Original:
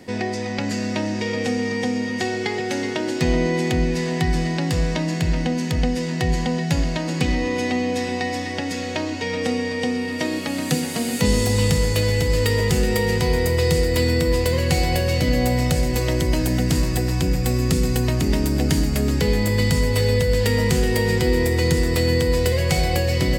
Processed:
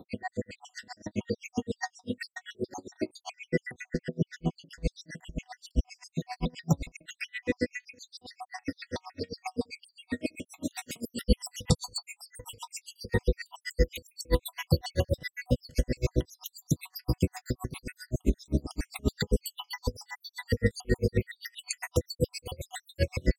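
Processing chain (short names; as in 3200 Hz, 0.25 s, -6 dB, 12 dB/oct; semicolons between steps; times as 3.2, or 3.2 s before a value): random spectral dropouts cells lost 75%; 3.89–4.83 LPF 2200 Hz 6 dB/oct; dB-linear tremolo 7.6 Hz, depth 37 dB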